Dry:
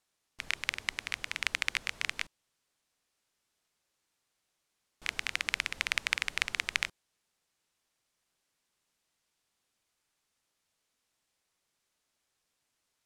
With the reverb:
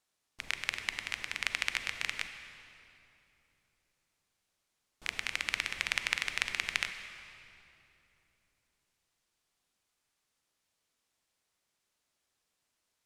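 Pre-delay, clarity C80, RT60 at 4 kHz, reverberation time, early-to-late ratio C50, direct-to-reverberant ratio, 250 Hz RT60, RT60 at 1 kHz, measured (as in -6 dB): 35 ms, 9.0 dB, 2.2 s, 3.0 s, 8.5 dB, 8.0 dB, 3.6 s, 2.7 s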